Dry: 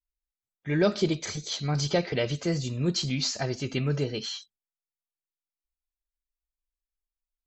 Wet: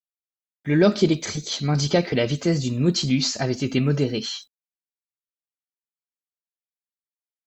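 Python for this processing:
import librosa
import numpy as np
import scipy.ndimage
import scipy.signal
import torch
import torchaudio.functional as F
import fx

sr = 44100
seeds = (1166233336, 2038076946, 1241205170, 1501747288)

y = fx.quant_dither(x, sr, seeds[0], bits=12, dither='none')
y = fx.peak_eq(y, sr, hz=250.0, db=6.5, octaves=0.73)
y = F.gain(torch.from_numpy(y), 4.5).numpy()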